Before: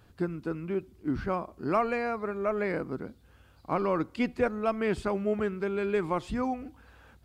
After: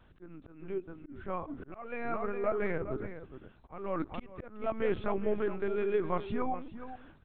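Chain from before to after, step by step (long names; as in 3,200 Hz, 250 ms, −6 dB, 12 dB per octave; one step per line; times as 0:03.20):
linear-prediction vocoder at 8 kHz pitch kept
slap from a distant wall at 71 metres, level −11 dB
volume swells 408 ms
level −2 dB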